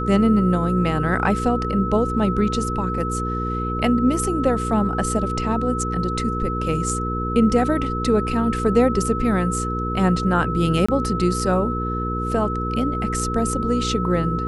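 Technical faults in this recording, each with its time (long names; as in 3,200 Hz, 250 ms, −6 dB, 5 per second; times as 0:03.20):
mains hum 60 Hz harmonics 8 −26 dBFS
whistle 1,300 Hz −26 dBFS
0:10.86–0:10.88: drop-out 25 ms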